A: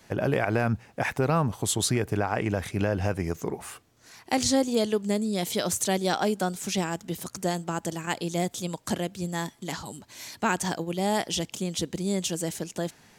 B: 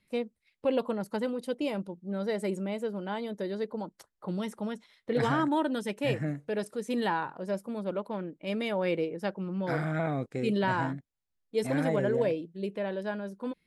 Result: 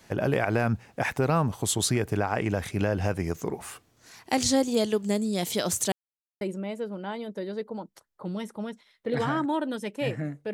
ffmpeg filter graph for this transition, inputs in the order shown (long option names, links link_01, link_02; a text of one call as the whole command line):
ffmpeg -i cue0.wav -i cue1.wav -filter_complex "[0:a]apad=whole_dur=10.53,atrim=end=10.53,asplit=2[link_01][link_02];[link_01]atrim=end=5.92,asetpts=PTS-STARTPTS,afade=type=out:start_time=5.916:duration=0.004:curve=hsin[link_03];[link_02]atrim=start=5.92:end=6.41,asetpts=PTS-STARTPTS,volume=0[link_04];[1:a]atrim=start=2.44:end=6.56,asetpts=PTS-STARTPTS,afade=type=in:duration=0.004:curve=hsin[link_05];[link_03][link_04][link_05]concat=n=3:v=0:a=1" out.wav